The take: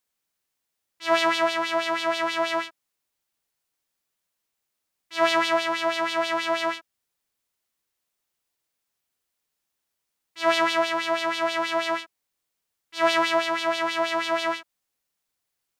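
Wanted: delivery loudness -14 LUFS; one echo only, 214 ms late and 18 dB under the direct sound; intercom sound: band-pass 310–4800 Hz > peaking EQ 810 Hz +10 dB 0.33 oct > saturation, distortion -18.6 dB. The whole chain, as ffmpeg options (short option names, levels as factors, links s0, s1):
-af "highpass=310,lowpass=4800,equalizer=f=810:t=o:w=0.33:g=10,aecho=1:1:214:0.126,asoftclip=threshold=0.251,volume=3.16"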